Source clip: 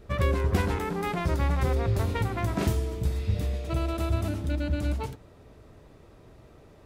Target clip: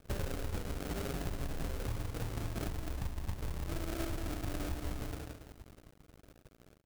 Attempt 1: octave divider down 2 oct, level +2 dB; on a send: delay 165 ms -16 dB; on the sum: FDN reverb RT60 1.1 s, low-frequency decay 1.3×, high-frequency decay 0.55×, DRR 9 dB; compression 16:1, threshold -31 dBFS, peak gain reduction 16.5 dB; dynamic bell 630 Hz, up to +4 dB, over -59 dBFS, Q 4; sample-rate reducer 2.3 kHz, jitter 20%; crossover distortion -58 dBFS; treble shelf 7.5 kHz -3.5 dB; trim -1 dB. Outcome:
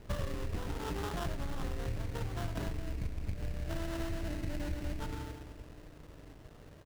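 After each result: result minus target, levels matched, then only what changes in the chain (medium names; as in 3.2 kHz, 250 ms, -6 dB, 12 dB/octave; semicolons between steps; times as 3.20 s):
crossover distortion: distortion -10 dB; 8 kHz band -4.0 dB; sample-rate reducer: distortion -4 dB
change: crossover distortion -47.5 dBFS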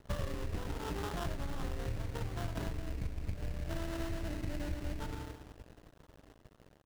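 8 kHz band -4.0 dB; sample-rate reducer: distortion -4 dB
change: treble shelf 7.5 kHz +6 dB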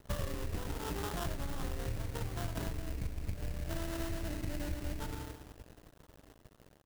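sample-rate reducer: distortion -4 dB
change: sample-rate reducer 980 Hz, jitter 20%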